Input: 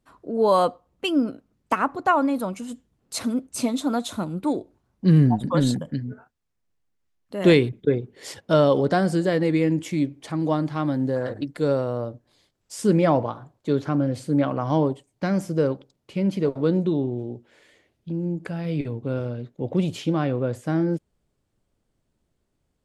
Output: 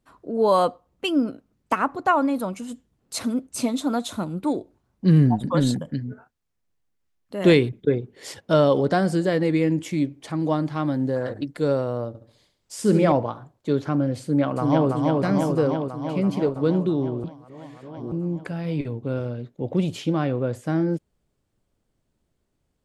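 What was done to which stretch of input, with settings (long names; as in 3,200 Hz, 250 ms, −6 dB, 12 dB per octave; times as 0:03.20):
0:12.08–0:13.12: flutter between parallel walls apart 11.8 metres, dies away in 0.53 s
0:14.23–0:14.89: delay throw 330 ms, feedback 75%, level −2 dB
0:17.24–0:18.12: reverse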